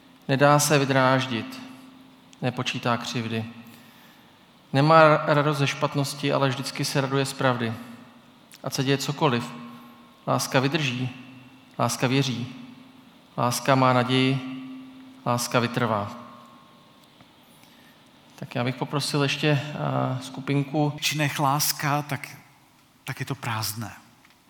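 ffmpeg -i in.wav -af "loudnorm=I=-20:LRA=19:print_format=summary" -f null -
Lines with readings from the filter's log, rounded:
Input Integrated:    -24.2 LUFS
Input True Peak:      -1.2 dBTP
Input LRA:             6.9 LU
Input Threshold:     -35.9 LUFS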